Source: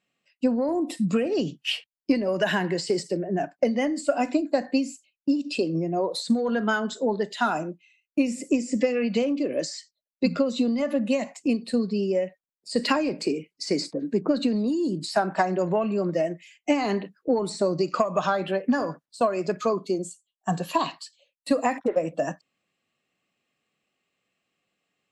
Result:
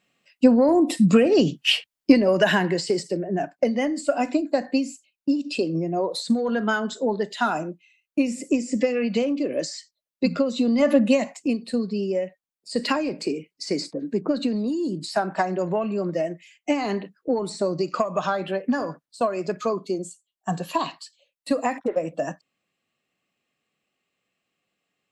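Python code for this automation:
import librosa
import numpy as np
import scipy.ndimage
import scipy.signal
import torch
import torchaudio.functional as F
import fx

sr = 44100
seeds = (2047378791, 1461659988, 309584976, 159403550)

y = fx.gain(x, sr, db=fx.line((2.11, 7.5), (3.0, 1.0), (10.61, 1.0), (10.88, 8.5), (11.54, -0.5)))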